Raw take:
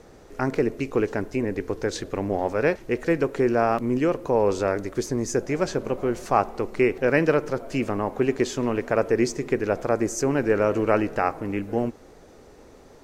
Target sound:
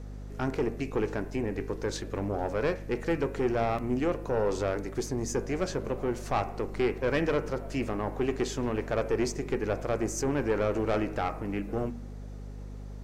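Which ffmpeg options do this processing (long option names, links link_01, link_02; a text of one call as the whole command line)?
ffmpeg -i in.wav -af "aeval=exprs='(tanh(6.31*val(0)+0.3)-tanh(0.3))/6.31':channel_layout=same,bandreject=frequency=78.62:width_type=h:width=4,bandreject=frequency=157.24:width_type=h:width=4,bandreject=frequency=235.86:width_type=h:width=4,bandreject=frequency=314.48:width_type=h:width=4,bandreject=frequency=393.1:width_type=h:width=4,bandreject=frequency=471.72:width_type=h:width=4,bandreject=frequency=550.34:width_type=h:width=4,bandreject=frequency=628.96:width_type=h:width=4,bandreject=frequency=707.58:width_type=h:width=4,bandreject=frequency=786.2:width_type=h:width=4,bandreject=frequency=864.82:width_type=h:width=4,bandreject=frequency=943.44:width_type=h:width=4,bandreject=frequency=1022.06:width_type=h:width=4,bandreject=frequency=1100.68:width_type=h:width=4,bandreject=frequency=1179.3:width_type=h:width=4,bandreject=frequency=1257.92:width_type=h:width=4,bandreject=frequency=1336.54:width_type=h:width=4,bandreject=frequency=1415.16:width_type=h:width=4,bandreject=frequency=1493.78:width_type=h:width=4,bandreject=frequency=1572.4:width_type=h:width=4,bandreject=frequency=1651.02:width_type=h:width=4,bandreject=frequency=1729.64:width_type=h:width=4,bandreject=frequency=1808.26:width_type=h:width=4,bandreject=frequency=1886.88:width_type=h:width=4,bandreject=frequency=1965.5:width_type=h:width=4,bandreject=frequency=2044.12:width_type=h:width=4,bandreject=frequency=2122.74:width_type=h:width=4,bandreject=frequency=2201.36:width_type=h:width=4,bandreject=frequency=2279.98:width_type=h:width=4,bandreject=frequency=2358.6:width_type=h:width=4,bandreject=frequency=2437.22:width_type=h:width=4,bandreject=frequency=2515.84:width_type=h:width=4,bandreject=frequency=2594.46:width_type=h:width=4,bandreject=frequency=2673.08:width_type=h:width=4,bandreject=frequency=2751.7:width_type=h:width=4,bandreject=frequency=2830.32:width_type=h:width=4,aeval=exprs='val(0)+0.0158*(sin(2*PI*50*n/s)+sin(2*PI*2*50*n/s)/2+sin(2*PI*3*50*n/s)/3+sin(2*PI*4*50*n/s)/4+sin(2*PI*5*50*n/s)/5)':channel_layout=same,volume=-3.5dB" out.wav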